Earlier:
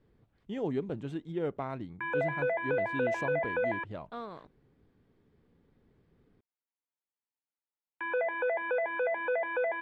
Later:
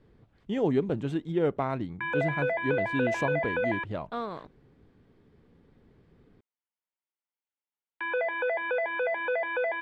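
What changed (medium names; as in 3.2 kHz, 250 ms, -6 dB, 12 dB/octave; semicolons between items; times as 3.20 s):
speech +7.0 dB; background: remove distance through air 410 m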